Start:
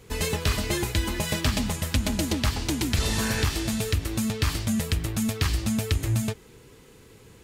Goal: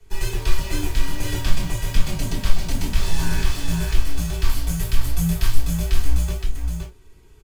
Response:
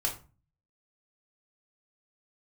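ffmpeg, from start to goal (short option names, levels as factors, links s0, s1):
-filter_complex "[0:a]asettb=1/sr,asplit=3[s0][s1][s2];[s0]atrim=end=4.494[s3];[s1]atrim=start=4.49:end=5.67,asetpts=PTS-STARTPTS,afade=t=in:d=0.004:c=qsin,afade=t=out:st=1.176:d=0.004:c=qsin,equalizer=f=13000:w=0.78:g=8[s4];[s2]atrim=start=5.666[s5];[s3][s4]acrossfade=d=0.004:c1=hsin:c2=qsin[s6];[s6][s5]acrossfade=d=0.004:c1=qsin:c2=hsin,acrossover=split=200|2300[s7][s8][s9];[s7]acontrast=42[s10];[s10][s8][s9]amix=inputs=3:normalize=0,afreqshift=-53,asplit=2[s11][s12];[s12]acrusher=bits=4:mix=0:aa=0.000001,volume=0.596[s13];[s11][s13]amix=inputs=2:normalize=0,aecho=1:1:518:0.562[s14];[1:a]atrim=start_sample=2205,atrim=end_sample=3528[s15];[s14][s15]afir=irnorm=-1:irlink=0,volume=0.251"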